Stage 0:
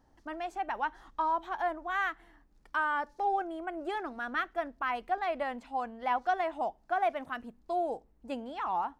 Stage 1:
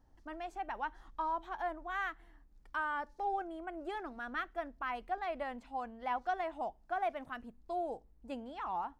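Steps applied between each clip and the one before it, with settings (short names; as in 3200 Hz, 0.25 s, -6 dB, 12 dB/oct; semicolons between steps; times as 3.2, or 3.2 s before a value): low shelf 100 Hz +10.5 dB; gain -6 dB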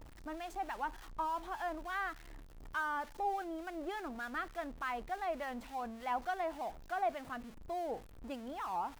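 zero-crossing step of -47 dBFS; harmonic tremolo 3.4 Hz, depth 50%, crossover 1200 Hz; gain +1 dB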